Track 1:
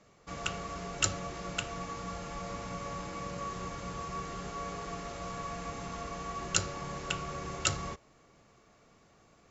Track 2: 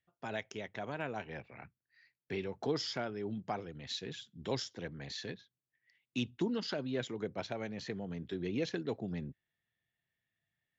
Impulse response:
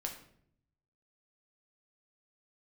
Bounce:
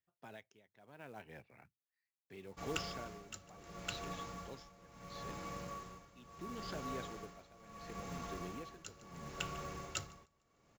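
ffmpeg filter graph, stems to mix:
-filter_complex "[0:a]adelay=2300,volume=0.531,asplit=2[s0][s1];[s1]volume=0.119[s2];[1:a]volume=0.355[s3];[s2]aecho=0:1:149|298|447|596|745:1|0.33|0.109|0.0359|0.0119[s4];[s0][s3][s4]amix=inputs=3:normalize=0,tremolo=f=0.73:d=0.87,acrusher=bits=5:mode=log:mix=0:aa=0.000001"

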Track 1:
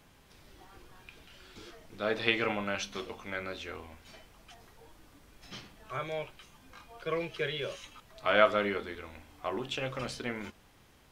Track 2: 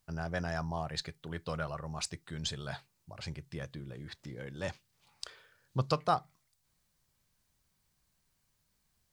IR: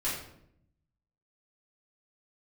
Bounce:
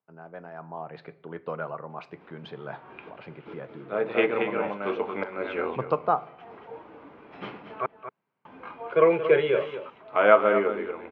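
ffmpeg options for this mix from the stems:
-filter_complex "[0:a]adelay=1900,volume=1.19,asplit=3[s0][s1][s2];[s0]atrim=end=7.86,asetpts=PTS-STARTPTS,afade=t=out:st=7.856:d=0.004:c=hsin[s3];[s1]atrim=start=7.86:end=8.45,asetpts=PTS-STARTPTS,volume=0[s4];[s2]atrim=start=8.45,asetpts=PTS-STARTPTS,afade=t=in:d=0.004:c=hsin[s5];[s3][s4][s5]concat=n=3:v=0:a=1,asplit=2[s6][s7];[s7]volume=0.299[s8];[1:a]highpass=f=110:w=0.5412,highpass=f=110:w=1.3066,volume=0.447,asplit=3[s9][s10][s11];[s10]volume=0.0891[s12];[s11]apad=whole_len=573892[s13];[s6][s13]sidechaincompress=threshold=0.00126:ratio=8:attack=11:release=188[s14];[2:a]atrim=start_sample=2205[s15];[s12][s15]afir=irnorm=-1:irlink=0[s16];[s8]aecho=0:1:230:1[s17];[s14][s9][s16][s17]amix=inputs=4:normalize=0,dynaudnorm=f=560:g=3:m=3.55,highpass=220,equalizer=f=440:t=q:w=4:g=5,equalizer=f=910:t=q:w=4:g=3,equalizer=f=1800:t=q:w=4:g=-7,lowpass=f=2200:w=0.5412,lowpass=f=2200:w=1.3066"

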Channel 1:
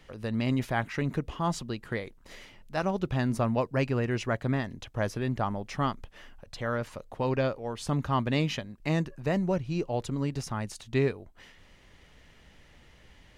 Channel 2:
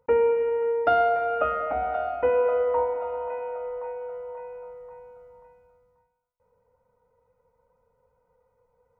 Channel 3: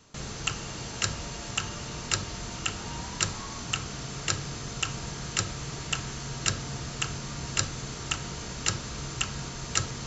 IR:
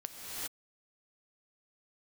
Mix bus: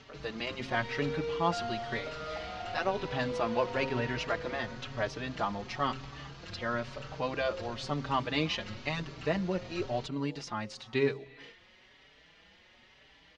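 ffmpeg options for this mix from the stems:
-filter_complex "[0:a]aemphasis=mode=production:type=bsi,bandreject=f=133:t=h:w=4,bandreject=f=266:t=h:w=4,bandreject=f=399:t=h:w=4,bandreject=f=532:t=h:w=4,volume=1.19,asplit=2[s0][s1];[s1]volume=0.112[s2];[1:a]acompressor=threshold=0.0562:ratio=6,acrusher=bits=4:mix=0:aa=0.5,asoftclip=type=hard:threshold=0.0447,adelay=650,volume=0.531[s3];[2:a]acompressor=mode=upward:threshold=0.0158:ratio=2.5,aeval=exprs='(tanh(50.1*val(0)+0.6)-tanh(0.6))/50.1':c=same,volume=0.668[s4];[3:a]atrim=start_sample=2205[s5];[s2][s5]afir=irnorm=-1:irlink=0[s6];[s0][s3][s4][s6]amix=inputs=4:normalize=0,lowpass=f=4600:w=0.5412,lowpass=f=4600:w=1.3066,asplit=2[s7][s8];[s8]adelay=4.8,afreqshift=1[s9];[s7][s9]amix=inputs=2:normalize=1"

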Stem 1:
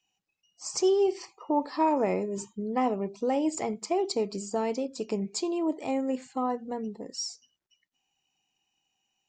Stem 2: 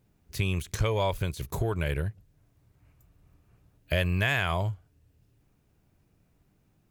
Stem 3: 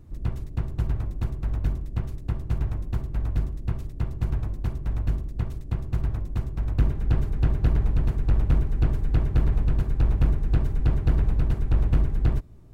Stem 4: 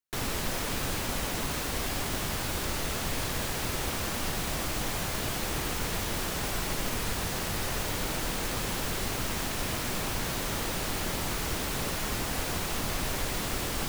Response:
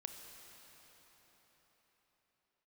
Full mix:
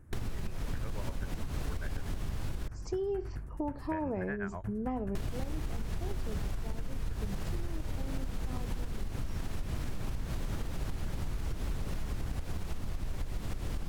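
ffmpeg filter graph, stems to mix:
-filter_complex "[0:a]adelay=2100,volume=0.355[s0];[1:a]lowpass=f=1900:w=0.5412,lowpass=f=1900:w=1.3066,tremolo=f=8.1:d=0.98,volume=1.12[s1];[2:a]volume=0.447[s2];[3:a]aemphasis=mode=production:type=50kf,volume=0.794,asplit=3[s3][s4][s5];[s3]atrim=end=2.68,asetpts=PTS-STARTPTS,afade=t=out:st=2.676:d=0.004:c=hsin[s6];[s4]atrim=start=2.68:end=5.15,asetpts=PTS-STARTPTS,volume=0[s7];[s5]atrim=start=5.15,asetpts=PTS-STARTPTS,afade=t=in:d=0.004:c=hsin[s8];[s6][s7][s8]concat=n=3:v=0:a=1[s9];[s1][s2]amix=inputs=2:normalize=0,equalizer=f=1600:t=o:w=0.67:g=11,equalizer=f=4000:t=o:w=0.67:g=-10,equalizer=f=10000:t=o:w=0.67:g=10,acompressor=threshold=0.0158:ratio=10,volume=1[s10];[s0][s9]amix=inputs=2:normalize=0,aemphasis=mode=reproduction:type=riaa,acompressor=threshold=0.0501:ratio=6,volume=1[s11];[s10][s11]amix=inputs=2:normalize=0,acompressor=threshold=0.0316:ratio=6"

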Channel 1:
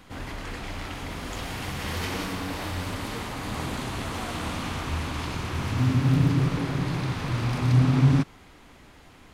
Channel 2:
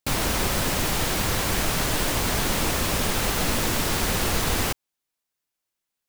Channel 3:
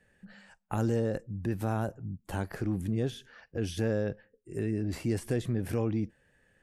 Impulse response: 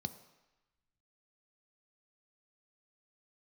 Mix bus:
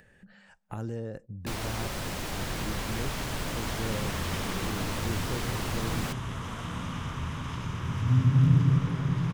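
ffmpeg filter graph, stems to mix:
-filter_complex "[0:a]adelay=2300,volume=0.596,asplit=2[s0][s1];[s1]volume=0.398[s2];[1:a]adelay=1400,volume=0.335[s3];[2:a]volume=0.447,asplit=2[s4][s5];[s5]volume=0.0841[s6];[3:a]atrim=start_sample=2205[s7];[s2][s6]amix=inputs=2:normalize=0[s8];[s8][s7]afir=irnorm=-1:irlink=0[s9];[s0][s3][s4][s9]amix=inputs=4:normalize=0,agate=range=0.112:threshold=0.00398:ratio=16:detection=peak,highshelf=f=8100:g=-7,acompressor=mode=upward:threshold=0.02:ratio=2.5"

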